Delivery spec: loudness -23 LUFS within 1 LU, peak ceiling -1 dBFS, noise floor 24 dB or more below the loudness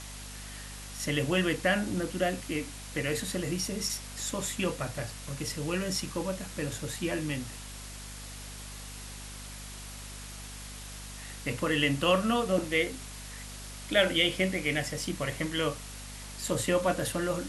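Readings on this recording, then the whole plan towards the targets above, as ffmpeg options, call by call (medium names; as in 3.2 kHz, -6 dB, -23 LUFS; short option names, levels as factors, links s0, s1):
hum 50 Hz; highest harmonic 250 Hz; hum level -43 dBFS; noise floor -43 dBFS; noise floor target -55 dBFS; loudness -30.5 LUFS; peak level -12.0 dBFS; loudness target -23.0 LUFS
-> -af "bandreject=f=50:t=h:w=4,bandreject=f=100:t=h:w=4,bandreject=f=150:t=h:w=4,bandreject=f=200:t=h:w=4,bandreject=f=250:t=h:w=4"
-af "afftdn=nr=12:nf=-43"
-af "volume=2.37"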